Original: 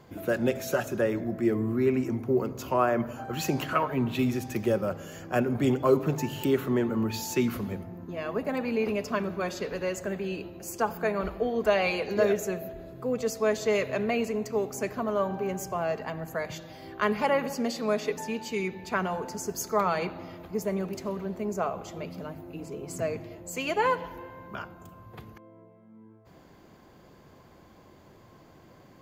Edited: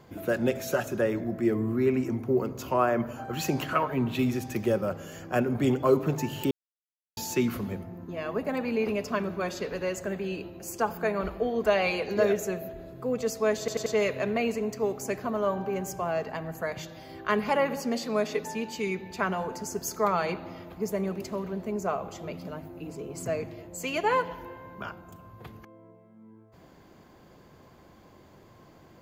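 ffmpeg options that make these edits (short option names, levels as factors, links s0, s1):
-filter_complex "[0:a]asplit=6[s0][s1][s2][s3][s4][s5];[s0]atrim=end=6.51,asetpts=PTS-STARTPTS,afade=t=out:st=6.506:d=0.004:c=hsin[s6];[s1]atrim=start=6.51:end=7.17,asetpts=PTS-STARTPTS,volume=0[s7];[s2]atrim=start=7.17:end=13.682,asetpts=PTS-STARTPTS,afade=t=in:d=0.004:c=hsin[s8];[s3]atrim=start=13.588:end=13.682[s9];[s4]atrim=start=13.588:end=13.682[s10];[s5]atrim=start=13.588[s11];[s6][s7][s8]concat=n=3:v=0:a=1[s12];[s12][s9]acrossfade=d=0.004:c1=hsin:c2=hsin[s13];[s13][s10]acrossfade=d=0.004:c1=hsin:c2=hsin[s14];[s14][s11]acrossfade=d=0.004:c1=hsin:c2=hsin"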